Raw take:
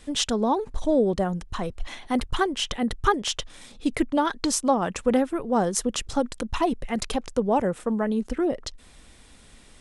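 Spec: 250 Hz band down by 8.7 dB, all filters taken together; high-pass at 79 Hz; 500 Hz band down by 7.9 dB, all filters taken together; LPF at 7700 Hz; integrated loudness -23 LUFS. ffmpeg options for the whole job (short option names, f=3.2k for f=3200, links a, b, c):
-af "highpass=79,lowpass=7.7k,equalizer=f=250:t=o:g=-8.5,equalizer=f=500:t=o:g=-7.5,volume=8dB"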